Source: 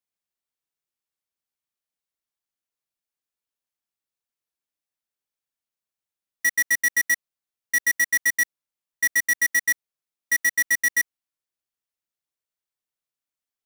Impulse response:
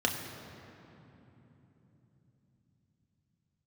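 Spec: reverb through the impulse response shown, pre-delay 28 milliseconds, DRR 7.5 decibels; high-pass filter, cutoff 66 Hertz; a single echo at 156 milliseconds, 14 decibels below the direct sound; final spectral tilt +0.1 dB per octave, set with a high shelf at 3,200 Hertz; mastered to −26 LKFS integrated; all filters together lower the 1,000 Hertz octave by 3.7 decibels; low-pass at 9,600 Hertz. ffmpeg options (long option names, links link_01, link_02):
-filter_complex "[0:a]highpass=66,lowpass=9600,equalizer=frequency=1000:width_type=o:gain=-4.5,highshelf=frequency=3200:gain=-6,aecho=1:1:156:0.2,asplit=2[link_01][link_02];[1:a]atrim=start_sample=2205,adelay=28[link_03];[link_02][link_03]afir=irnorm=-1:irlink=0,volume=-16.5dB[link_04];[link_01][link_04]amix=inputs=2:normalize=0,volume=-1dB"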